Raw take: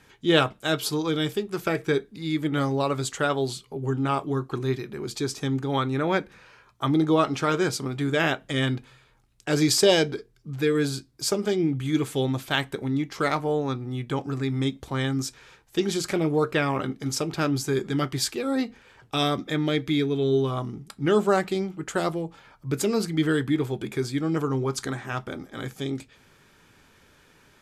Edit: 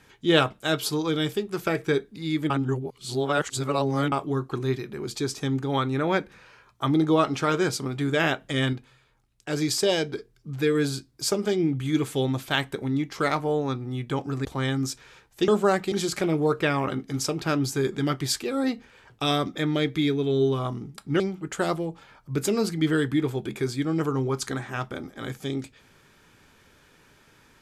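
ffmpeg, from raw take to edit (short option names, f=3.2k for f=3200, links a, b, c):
-filter_complex "[0:a]asplit=9[a][b][c][d][e][f][g][h][i];[a]atrim=end=2.502[j];[b]atrim=start=2.498:end=4.122,asetpts=PTS-STARTPTS,areverse[k];[c]atrim=start=4.118:end=8.732[l];[d]atrim=start=8.728:end=10.132,asetpts=PTS-STARTPTS,volume=-4.5dB[m];[e]atrim=start=10.128:end=14.452[n];[f]atrim=start=14.808:end=15.842[o];[g]atrim=start=21.118:end=21.562[p];[h]atrim=start=15.838:end=21.122[q];[i]atrim=start=21.558[r];[j][k]acrossfade=d=0.004:c1=hsin:c2=hsin[s];[s][l]acrossfade=d=0.004:c1=hsin:c2=hsin[t];[t][m]acrossfade=d=0.004:c1=hsin:c2=hsin[u];[u][n]acrossfade=d=0.004:c1=hsin:c2=hsin[v];[v][o]acrossfade=d=0.004:c1=hsin:c2=hsin[w];[w][p]acrossfade=d=0.004:c1=hsin:c2=hsin[x];[x][q]acrossfade=d=0.004:c1=hsin:c2=hsin[y];[y][r]acrossfade=d=0.004:c1=hsin:c2=hsin"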